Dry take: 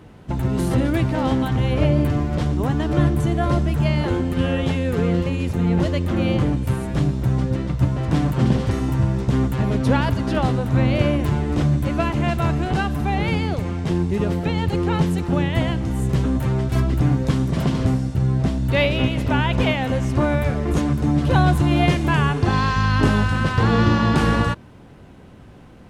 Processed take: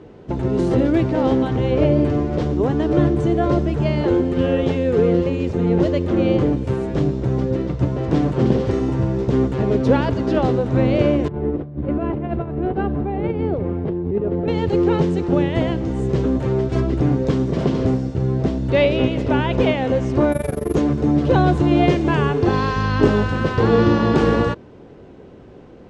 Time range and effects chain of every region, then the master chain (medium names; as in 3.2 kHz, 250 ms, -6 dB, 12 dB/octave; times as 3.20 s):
11.28–14.48 s: tape spacing loss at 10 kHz 44 dB + compressor with a negative ratio -23 dBFS, ratio -0.5
20.32–20.75 s: AM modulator 23 Hz, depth 85% + careless resampling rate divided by 4×, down none, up zero stuff
whole clip: low-pass 7 kHz 24 dB/octave; peaking EQ 420 Hz +12.5 dB 1.2 oct; trim -3 dB